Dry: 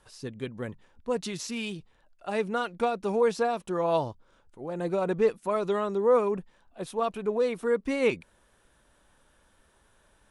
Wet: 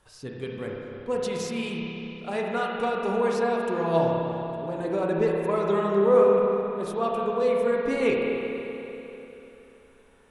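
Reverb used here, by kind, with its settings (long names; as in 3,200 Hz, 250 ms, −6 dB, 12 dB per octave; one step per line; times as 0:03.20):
spring reverb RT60 3.3 s, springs 30/48 ms, chirp 65 ms, DRR −2 dB
level −1 dB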